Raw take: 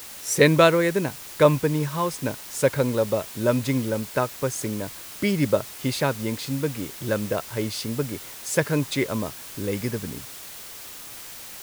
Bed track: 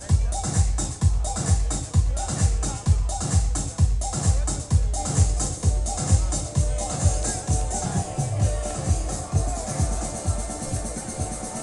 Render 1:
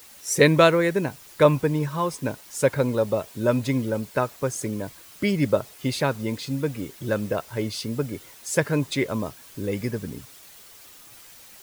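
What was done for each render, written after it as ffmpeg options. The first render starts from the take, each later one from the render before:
ffmpeg -i in.wav -af "afftdn=noise_reduction=9:noise_floor=-40" out.wav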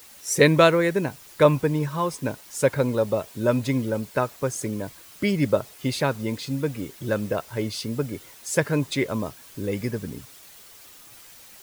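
ffmpeg -i in.wav -af anull out.wav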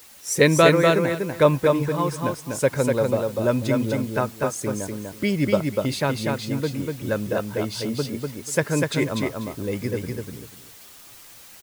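ffmpeg -i in.wav -af "aecho=1:1:245|490|735:0.668|0.134|0.0267" out.wav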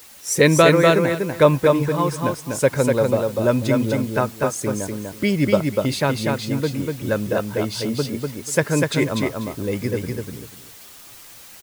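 ffmpeg -i in.wav -af "volume=3dB,alimiter=limit=-2dB:level=0:latency=1" out.wav

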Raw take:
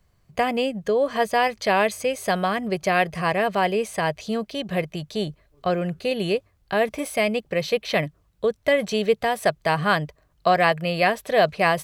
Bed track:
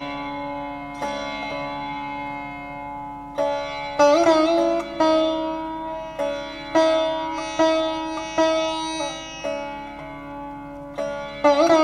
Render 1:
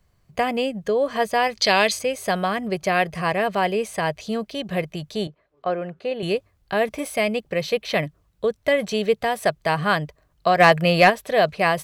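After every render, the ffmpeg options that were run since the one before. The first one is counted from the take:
ffmpeg -i in.wav -filter_complex "[0:a]asettb=1/sr,asplit=3[link_01][link_02][link_03];[link_01]atrim=end=1.554[link_04];[link_02]atrim=start=1.55:end=1.99,asetpts=PTS-STARTPTS,afade=type=in:duration=0.004:curve=qsin,afade=type=out:start_time=0.436:duration=0.004:curve=qsin,equalizer=frequency=4600:width_type=o:width=1.5:gain=13.5[link_05];[link_03]atrim=start=1.986[link_06];[link_04][link_05]acrossfade=duration=0.004:curve1=hsin:curve2=qsin[link_07];[link_07][link_06]acrossfade=duration=0.004:curve1=qsin:curve2=hsin,asettb=1/sr,asplit=3[link_08][link_09][link_10];[link_08]atrim=end=5.274[link_11];[link_09]atrim=start=5.27:end=6.23,asetpts=PTS-STARTPTS,afade=type=in:duration=0.004:curve=qsin,afade=type=out:start_time=0.956:duration=0.004:curve=qsin,bandpass=frequency=790:width_type=q:width=0.55[link_12];[link_10]atrim=start=6.226[link_13];[link_11][link_12]acrossfade=duration=0.004:curve1=hsin:curve2=qsin[link_14];[link_14][link_13]acrossfade=duration=0.004:curve1=qsin:curve2=hsin,asplit=3[link_15][link_16][link_17];[link_15]afade=type=out:start_time=10.59:duration=0.02[link_18];[link_16]acontrast=73,afade=type=in:start_time=10.59:duration=0.02,afade=type=out:start_time=11.09:duration=0.02[link_19];[link_17]afade=type=in:start_time=11.09:duration=0.02[link_20];[link_18][link_19][link_20]amix=inputs=3:normalize=0" out.wav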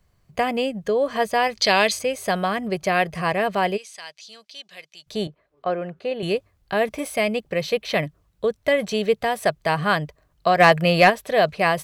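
ffmpeg -i in.wav -filter_complex "[0:a]asplit=3[link_01][link_02][link_03];[link_01]afade=type=out:start_time=3.76:duration=0.02[link_04];[link_02]bandpass=frequency=5000:width_type=q:width=1.4,afade=type=in:start_time=3.76:duration=0.02,afade=type=out:start_time=5.06:duration=0.02[link_05];[link_03]afade=type=in:start_time=5.06:duration=0.02[link_06];[link_04][link_05][link_06]amix=inputs=3:normalize=0" out.wav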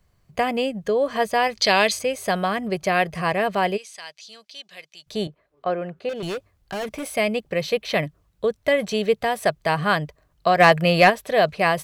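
ffmpeg -i in.wav -filter_complex "[0:a]asettb=1/sr,asplit=3[link_01][link_02][link_03];[link_01]atrim=end=6.094[link_04];[link_02]atrim=start=6.09:end=7.15,asetpts=PTS-STARTPTS,afade=type=in:duration=0.004:curve=qsin,afade=type=out:start_time=1.056:duration=0.004:curve=qsin,asoftclip=type=hard:threshold=-26dB[link_05];[link_03]atrim=start=7.146[link_06];[link_04][link_05]acrossfade=duration=0.004:curve1=hsin:curve2=qsin[link_07];[link_07][link_06]acrossfade=duration=0.004:curve1=qsin:curve2=hsin" out.wav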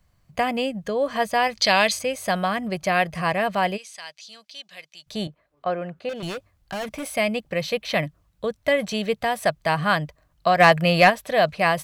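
ffmpeg -i in.wav -af "equalizer=frequency=410:width=4.3:gain=-9" out.wav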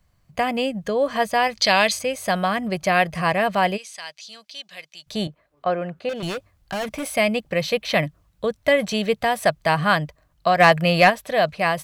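ffmpeg -i in.wav -af "dynaudnorm=framelen=110:gausssize=11:maxgain=3dB" out.wav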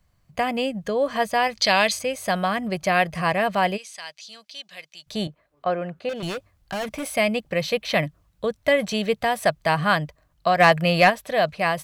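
ffmpeg -i in.wav -af "volume=-1.5dB" out.wav

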